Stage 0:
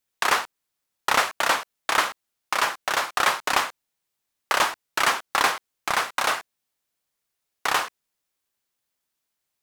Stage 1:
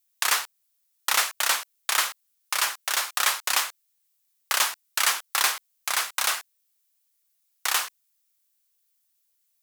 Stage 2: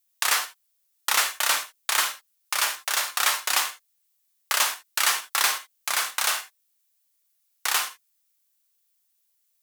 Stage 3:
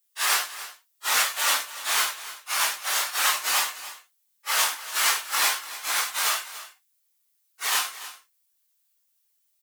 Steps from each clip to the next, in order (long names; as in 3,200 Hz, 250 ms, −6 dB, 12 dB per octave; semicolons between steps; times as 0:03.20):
spectral tilt +4.5 dB per octave; level −7 dB
reverb whose tail is shaped and stops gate 100 ms flat, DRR 7.5 dB
random phases in long frames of 100 ms; single-tap delay 290 ms −15 dB